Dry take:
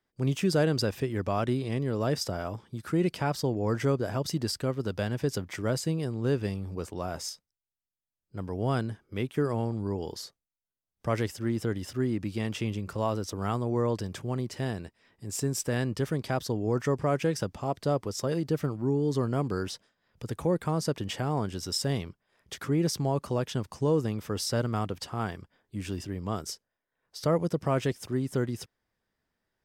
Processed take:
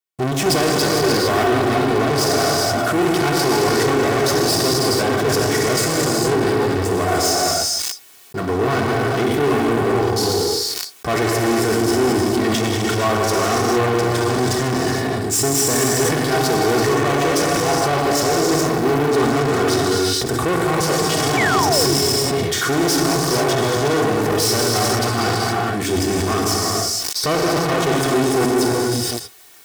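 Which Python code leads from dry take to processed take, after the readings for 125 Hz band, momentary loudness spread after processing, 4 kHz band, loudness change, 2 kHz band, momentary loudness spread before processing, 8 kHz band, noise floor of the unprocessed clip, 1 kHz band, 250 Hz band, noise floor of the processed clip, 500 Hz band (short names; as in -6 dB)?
+7.0 dB, 3 LU, +18.0 dB, +13.0 dB, +18.5 dB, 10 LU, +19.5 dB, under -85 dBFS, +17.0 dB, +11.0 dB, -25 dBFS, +13.5 dB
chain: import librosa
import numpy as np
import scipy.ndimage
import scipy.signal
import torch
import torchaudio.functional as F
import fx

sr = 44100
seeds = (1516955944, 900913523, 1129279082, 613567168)

y = fx.leveller(x, sr, passes=3)
y = fx.peak_eq(y, sr, hz=2700.0, db=-8.5, octaves=0.45)
y = y + 10.0 ** (-16.5 / 20.0) * np.pad(y, (int(156 * sr / 1000.0), 0))[:len(y)]
y = fx.quant_dither(y, sr, seeds[0], bits=12, dither='triangular')
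y = fx.rev_gated(y, sr, seeds[1], gate_ms=500, shape='flat', drr_db=-3.5)
y = fx.leveller(y, sr, passes=5)
y = y + 0.49 * np.pad(y, (int(2.7 * sr / 1000.0), 0))[:len(y)]
y = fx.spec_paint(y, sr, seeds[2], shape='fall', start_s=21.37, length_s=0.57, low_hz=310.0, high_hz=2400.0, level_db=-10.0)
y = fx.highpass(y, sr, hz=180.0, slope=6)
y = fx.sustainer(y, sr, db_per_s=22.0)
y = F.gain(torch.from_numpy(y), -10.0).numpy()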